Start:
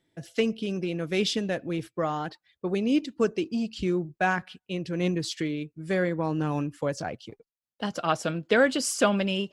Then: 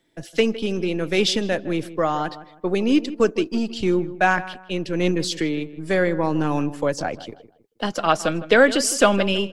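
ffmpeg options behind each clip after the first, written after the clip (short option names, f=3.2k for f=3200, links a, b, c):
-filter_complex "[0:a]acrossover=split=230|2700[a][b][c];[a]aeval=exprs='max(val(0),0)':c=same[d];[d][b][c]amix=inputs=3:normalize=0,asplit=2[e][f];[f]adelay=159,lowpass=f=1.7k:p=1,volume=-14.5dB,asplit=2[g][h];[h]adelay=159,lowpass=f=1.7k:p=1,volume=0.33,asplit=2[i][j];[j]adelay=159,lowpass=f=1.7k:p=1,volume=0.33[k];[e][g][i][k]amix=inputs=4:normalize=0,volume=7dB"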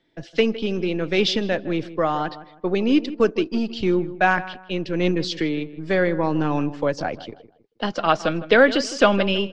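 -af "lowpass=f=5.2k:w=0.5412,lowpass=f=5.2k:w=1.3066"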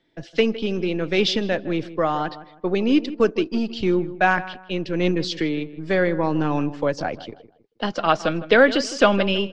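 -af anull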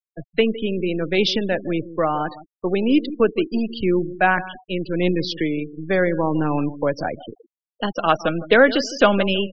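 -af "afftfilt=real='re*gte(hypot(re,im),0.0355)':imag='im*gte(hypot(re,im),0.0355)':win_size=1024:overlap=0.75,volume=1dB"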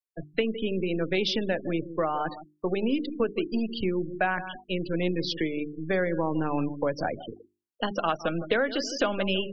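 -af "acompressor=threshold=-20dB:ratio=5,bandreject=f=50:t=h:w=6,bandreject=f=100:t=h:w=6,bandreject=f=150:t=h:w=6,bandreject=f=200:t=h:w=6,bandreject=f=250:t=h:w=6,bandreject=f=300:t=h:w=6,bandreject=f=350:t=h:w=6,bandreject=f=400:t=h:w=6,volume=-2.5dB"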